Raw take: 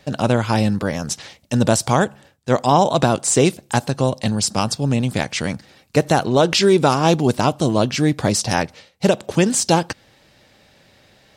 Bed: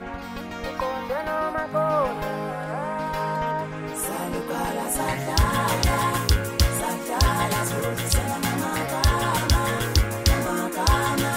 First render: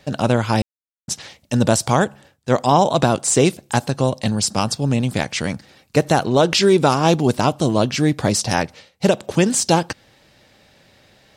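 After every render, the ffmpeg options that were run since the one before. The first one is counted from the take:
-filter_complex "[0:a]asplit=3[a][b][c];[a]atrim=end=0.62,asetpts=PTS-STARTPTS,afade=t=out:st=0.616:d=0.004:c=hsin[d];[b]atrim=start=0.62:end=1.08,asetpts=PTS-STARTPTS,volume=0[e];[c]atrim=start=1.08,asetpts=PTS-STARTPTS,afade=t=in:d=0.004:c=hsin[f];[d][e][f]concat=n=3:v=0:a=1"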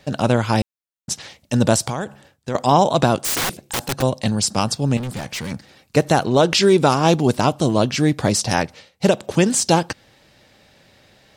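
-filter_complex "[0:a]asettb=1/sr,asplit=3[a][b][c];[a]atrim=end=1.874[d];[b]atrim=start=1.87:end=2.55,asetpts=PTS-STARTPTS,afade=t=in:d=0.004:c=qsin,afade=t=out:st=0.676:d=0.004:c=qsin,acompressor=threshold=-21dB:ratio=5:attack=3.2:release=140:knee=1:detection=peak[e];[c]atrim=start=2.546[f];[d][e]acrossfade=d=0.004:c1=hsin:c2=qsin[g];[g][f]acrossfade=d=0.004:c1=qsin:c2=hsin,asplit=3[h][i][j];[h]afade=t=out:st=3.17:d=0.02[k];[i]aeval=exprs='(mod(6.68*val(0)+1,2)-1)/6.68':c=same,afade=t=in:st=3.17:d=0.02,afade=t=out:st=4.01:d=0.02[l];[j]afade=t=in:st=4.01:d=0.02[m];[k][l][m]amix=inputs=3:normalize=0,asettb=1/sr,asplit=3[n][o][p];[n]atrim=end=4.974[q];[o]atrim=start=4.97:end=5.52,asetpts=PTS-STARTPTS,afade=t=in:d=0.004:c=qsin,afade=t=out:st=0.546:d=0.004:c=qsin,volume=24.5dB,asoftclip=hard,volume=-24.5dB[r];[p]atrim=start=5.516[s];[q][r]acrossfade=d=0.004:c1=hsin:c2=qsin[t];[t][s]acrossfade=d=0.004:c1=qsin:c2=hsin"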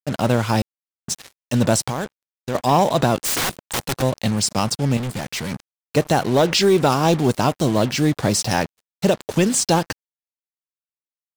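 -af "acrusher=bits=4:mix=0:aa=0.5,asoftclip=type=tanh:threshold=-7dB"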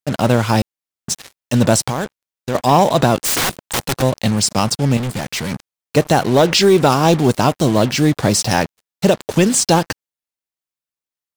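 -af "volume=4dB"

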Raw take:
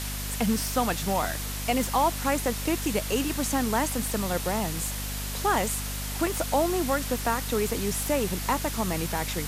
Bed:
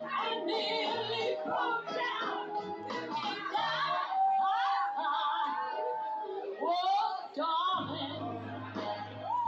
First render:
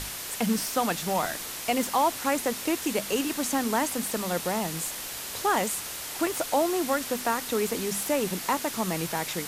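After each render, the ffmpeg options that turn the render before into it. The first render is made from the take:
-af "bandreject=f=50:t=h:w=6,bandreject=f=100:t=h:w=6,bandreject=f=150:t=h:w=6,bandreject=f=200:t=h:w=6,bandreject=f=250:t=h:w=6"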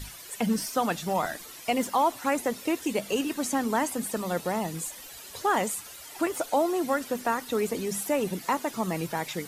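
-af "afftdn=nr=13:nf=-37"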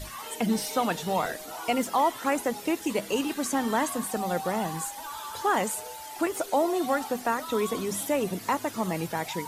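-filter_complex "[1:a]volume=-7.5dB[a];[0:a][a]amix=inputs=2:normalize=0"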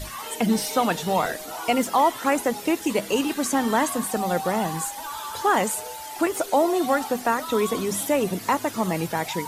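-af "volume=4.5dB"

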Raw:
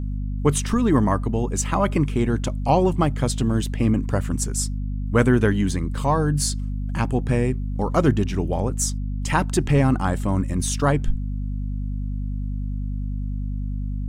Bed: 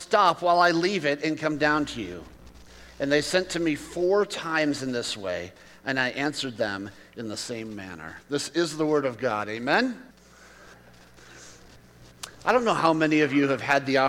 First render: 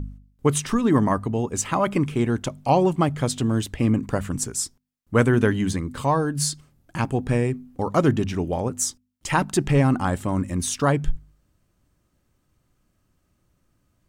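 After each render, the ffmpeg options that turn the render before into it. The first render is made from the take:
-af "bandreject=f=50:t=h:w=4,bandreject=f=100:t=h:w=4,bandreject=f=150:t=h:w=4,bandreject=f=200:t=h:w=4,bandreject=f=250:t=h:w=4"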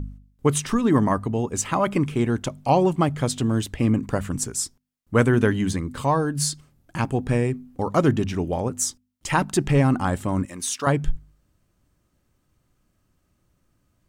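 -filter_complex "[0:a]asettb=1/sr,asplit=3[a][b][c];[a]atrim=end=10.454[d];[b]atrim=start=10.45:end=10.87,asetpts=PTS-STARTPTS,afade=t=in:d=0.004:c=qsin,afade=t=out:st=0.416:d=0.004:c=qsin,highpass=f=770:p=1[e];[c]atrim=start=10.866[f];[d][e]acrossfade=d=0.004:c1=hsin:c2=qsin[g];[g][f]acrossfade=d=0.004:c1=qsin:c2=hsin"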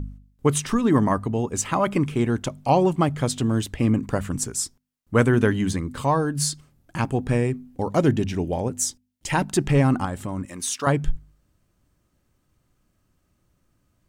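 -filter_complex "[0:a]asettb=1/sr,asplit=3[a][b][c];[a]atrim=end=7.684[d];[b]atrim=start=7.68:end=9.52,asetpts=PTS-STARTPTS,afade=t=in:d=0.004:c=qsin,afade=t=out:st=1.836:d=0.004:c=qsin,equalizer=f=1.2k:t=o:w=0.42:g=-8[e];[c]atrim=start=9.516[f];[d][e]acrossfade=d=0.004:c1=hsin:c2=qsin[g];[g][f]acrossfade=d=0.004:c1=qsin:c2=hsin,asettb=1/sr,asplit=3[h][i][j];[h]atrim=end=10.054[k];[i]atrim=start=10.05:end=10.53,asetpts=PTS-STARTPTS,afade=t=in:d=0.004:c=qsin,afade=t=out:st=0.476:d=0.004:c=qsin,acompressor=threshold=-26dB:ratio=2.5:attack=3.2:release=140:knee=1:detection=peak[l];[j]atrim=start=10.526[m];[k][l]acrossfade=d=0.004:c1=hsin:c2=qsin[n];[n][m]acrossfade=d=0.004:c1=qsin:c2=hsin"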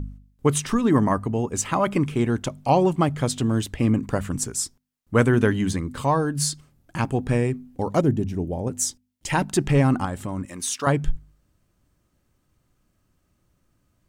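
-filter_complex "[0:a]asettb=1/sr,asplit=3[a][b][c];[a]atrim=end=0.914[d];[b]atrim=start=0.91:end=1.52,asetpts=PTS-STARTPTS,afade=t=in:d=0.004:c=qsin,afade=t=out:st=0.606:d=0.004:c=qsin,equalizer=f=3.7k:t=o:w=0.3:g=-7[e];[c]atrim=start=1.516[f];[d][e]acrossfade=d=0.004:c1=hsin:c2=qsin[g];[g][f]acrossfade=d=0.004:c1=qsin:c2=hsin,asettb=1/sr,asplit=3[h][i][j];[h]atrim=end=8.014[k];[i]atrim=start=8.01:end=8.67,asetpts=PTS-STARTPTS,afade=t=in:d=0.004:c=qsin,afade=t=out:st=0.656:d=0.004:c=qsin,equalizer=f=2.9k:w=0.33:g=-13.5[l];[j]atrim=start=8.666[m];[k][l]acrossfade=d=0.004:c1=hsin:c2=qsin[n];[n][m]acrossfade=d=0.004:c1=qsin:c2=hsin"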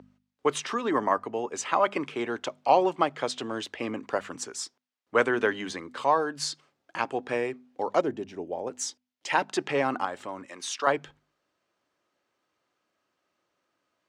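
-filter_complex "[0:a]highpass=110,acrossover=split=370 5900:gain=0.0631 1 0.0794[a][b][c];[a][b][c]amix=inputs=3:normalize=0"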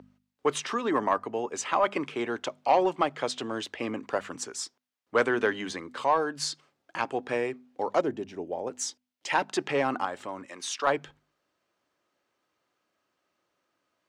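-af "asoftclip=type=tanh:threshold=-11.5dB"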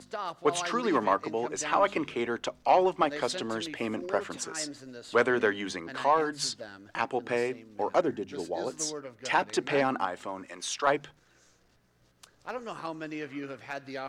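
-filter_complex "[1:a]volume=-16dB[a];[0:a][a]amix=inputs=2:normalize=0"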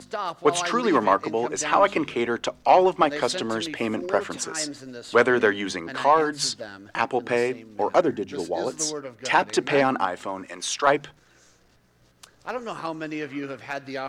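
-af "volume=6dB"

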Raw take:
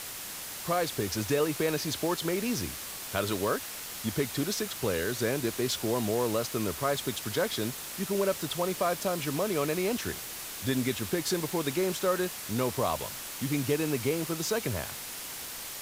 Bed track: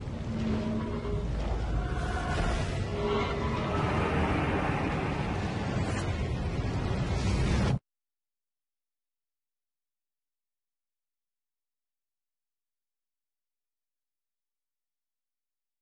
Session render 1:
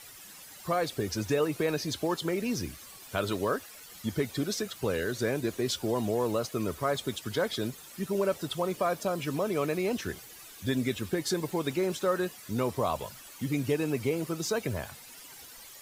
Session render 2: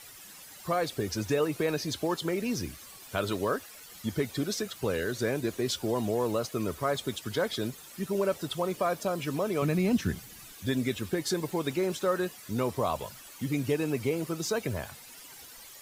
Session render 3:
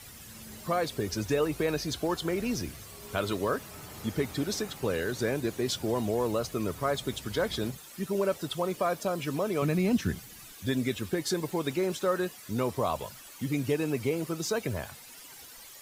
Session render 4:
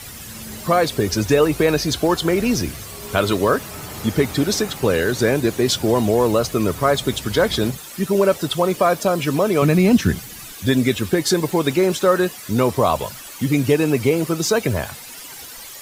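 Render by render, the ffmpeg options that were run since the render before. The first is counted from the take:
-af "afftdn=nr=13:nf=-40"
-filter_complex "[0:a]asettb=1/sr,asplit=3[a][b][c];[a]atrim=end=9.624[d];[b]atrim=start=9.62:end=10.53,asetpts=PTS-STARTPTS,afade=t=in:d=0.004:c=qsin,afade=t=out:st=0.906:d=0.004:c=qsin,lowshelf=f=290:t=q:w=1.5:g=8[e];[c]atrim=start=10.526[f];[d][e]acrossfade=d=0.004:c1=hsin:c2=qsin[g];[g][f]acrossfade=d=0.004:c1=qsin:c2=hsin"
-filter_complex "[1:a]volume=-18.5dB[a];[0:a][a]amix=inputs=2:normalize=0"
-af "volume=12dB"

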